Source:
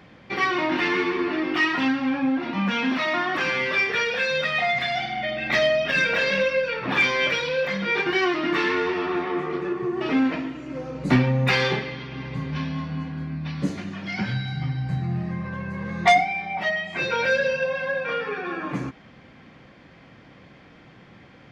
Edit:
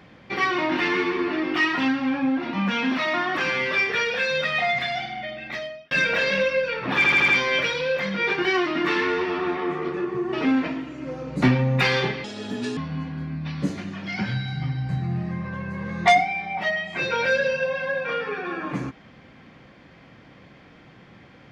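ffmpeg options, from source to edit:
ffmpeg -i in.wav -filter_complex "[0:a]asplit=8[link_01][link_02][link_03][link_04][link_05][link_06][link_07][link_08];[link_01]atrim=end=5.91,asetpts=PTS-STARTPTS,afade=type=out:start_time=4.72:duration=1.19[link_09];[link_02]atrim=start=5.91:end=7.042,asetpts=PTS-STARTPTS,afade=type=in:duration=0.004:curve=hsin[link_10];[link_03]atrim=start=6.958:end=7.042[link_11];[link_04]atrim=start=6.958:end=7.042[link_12];[link_05]atrim=start=6.958:end=7.042[link_13];[link_06]atrim=start=6.958:end=11.924[link_14];[link_07]atrim=start=11.92:end=12.77,asetpts=PTS-STARTPTS,asetrate=70560,aresample=44100,atrim=end_sample=23428,asetpts=PTS-STARTPTS[link_15];[link_08]atrim=start=12.766[link_16];[link_09][link_10]concat=n=2:v=0:a=1[link_17];[link_17][link_11]acrossfade=duration=0.004:curve1=hsin:curve2=hsin[link_18];[link_18][link_12]acrossfade=duration=0.004:curve1=hsin:curve2=hsin[link_19];[link_19][link_13]acrossfade=duration=0.004:curve1=hsin:curve2=hsin[link_20];[link_20][link_14]acrossfade=duration=0.004:curve1=hsin:curve2=hsin[link_21];[link_21][link_15]acrossfade=duration=0.004:curve1=hsin:curve2=hsin[link_22];[link_22][link_16]acrossfade=duration=0.004:curve1=hsin:curve2=hsin" out.wav

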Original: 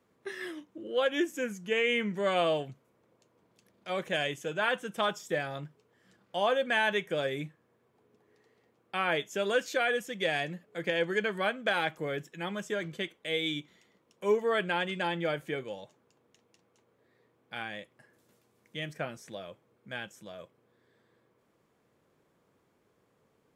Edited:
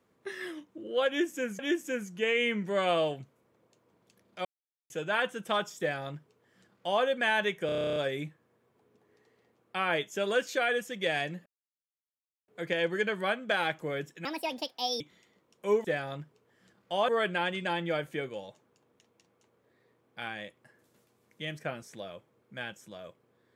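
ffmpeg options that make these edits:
ffmpeg -i in.wav -filter_complex "[0:a]asplit=19[link_01][link_02][link_03][link_04][link_05][link_06][link_07][link_08][link_09][link_10][link_11][link_12][link_13][link_14][link_15][link_16][link_17][link_18][link_19];[link_01]atrim=end=1.592[link_20];[link_02]atrim=start=1.078:end=3.94,asetpts=PTS-STARTPTS,afade=type=out:start_time=2.858:duration=0.004:curve=hsin[link_21];[link_03]atrim=start=3.94:end=4.39,asetpts=PTS-STARTPTS,volume=0[link_22];[link_04]atrim=start=4.39:end=7.182,asetpts=PTS-STARTPTS,afade=type=in:duration=0.004:curve=hsin[link_23];[link_05]atrim=start=7.148:end=7.182[link_24];[link_06]atrim=start=7.148:end=7.182[link_25];[link_07]atrim=start=7.148:end=7.182[link_26];[link_08]atrim=start=7.148:end=7.182[link_27];[link_09]atrim=start=7.148:end=7.182[link_28];[link_10]atrim=start=7.148:end=7.182[link_29];[link_11]atrim=start=7.148:end=7.182[link_30];[link_12]atrim=start=7.148:end=7.182[link_31];[link_13]atrim=start=7.148:end=7.182[link_32];[link_14]atrim=start=7.148:end=10.65,asetpts=PTS-STARTPTS,afade=type=out:start_time=3.498:duration=0.004:curve=hsin,apad=pad_dur=1.02[link_33];[link_15]atrim=start=10.65:end=12.424,asetpts=PTS-STARTPTS,afade=type=in:duration=0.004:curve=hsin[link_34];[link_16]atrim=start=12.42:end=13.59,asetpts=PTS-STARTPTS,asetrate=68355,aresample=44100,atrim=end_sample=33288,asetpts=PTS-STARTPTS[link_35];[link_17]atrim=start=13.586:end=14.432[link_36];[link_18]atrim=start=5.278:end=6.522[link_37];[link_19]atrim=start=14.428[link_38];[link_21][link_22][link_23]concat=n=3:v=0:a=1[link_39];[link_20][link_39]acrossfade=duration=0.004:curve1=hsin:curve2=hsin[link_40];[link_40][link_24]acrossfade=duration=0.004:curve1=hsin:curve2=hsin[link_41];[link_41][link_25]acrossfade=duration=0.004:curve1=hsin:curve2=hsin[link_42];[link_42][link_26]acrossfade=duration=0.004:curve1=hsin:curve2=hsin[link_43];[link_43][link_27]acrossfade=duration=0.004:curve1=hsin:curve2=hsin[link_44];[link_44][link_28]acrossfade=duration=0.004:curve1=hsin:curve2=hsin[link_45];[link_45][link_29]acrossfade=duration=0.004:curve1=hsin:curve2=hsin[link_46];[link_46][link_30]acrossfade=duration=0.004:curve1=hsin:curve2=hsin[link_47];[link_47][link_31]acrossfade=duration=0.004:curve1=hsin:curve2=hsin[link_48];[link_48][link_32]acrossfade=duration=0.004:curve1=hsin:curve2=hsin[link_49];[link_33][link_34]concat=n=2:v=0:a=1[link_50];[link_49][link_50]acrossfade=duration=0.004:curve1=hsin:curve2=hsin[link_51];[link_51][link_35]acrossfade=duration=0.004:curve1=hsin:curve2=hsin[link_52];[link_52][link_36]acrossfade=duration=0.004:curve1=hsin:curve2=hsin[link_53];[link_53][link_37]acrossfade=duration=0.004:curve1=hsin:curve2=hsin[link_54];[link_54][link_38]acrossfade=duration=0.004:curve1=hsin:curve2=hsin" out.wav

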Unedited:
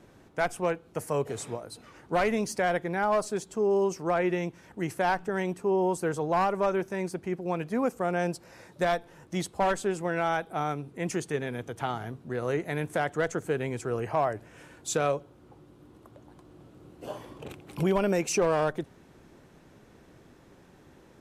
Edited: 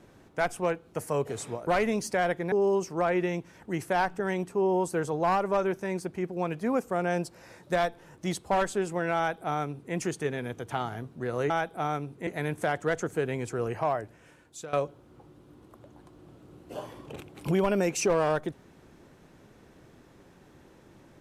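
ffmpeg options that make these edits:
ffmpeg -i in.wav -filter_complex "[0:a]asplit=6[link_01][link_02][link_03][link_04][link_05][link_06];[link_01]atrim=end=1.672[link_07];[link_02]atrim=start=2.118:end=2.972[link_08];[link_03]atrim=start=3.608:end=12.592[link_09];[link_04]atrim=start=10.258:end=11.032[link_10];[link_05]atrim=start=12.588:end=15.05,asetpts=PTS-STARTPTS,afade=type=out:start_time=1.422:duration=1.04:silence=0.149624[link_11];[link_06]atrim=start=15.05,asetpts=PTS-STARTPTS,afade=type=in:duration=0.004:curve=hsin:silence=0.149624[link_12];[link_07][link_08]acrossfade=duration=0.004:curve1=hsin:curve2=hsin[link_13];[link_13][link_09]acrossfade=duration=0.004:curve1=hsin:curve2=hsin[link_14];[link_14][link_10]acrossfade=duration=0.004:curve1=hsin:curve2=hsin[link_15];[link_11][link_12]concat=n=2:v=0:a=1[link_16];[link_15][link_16]acrossfade=duration=0.004:curve1=hsin:curve2=hsin" out.wav

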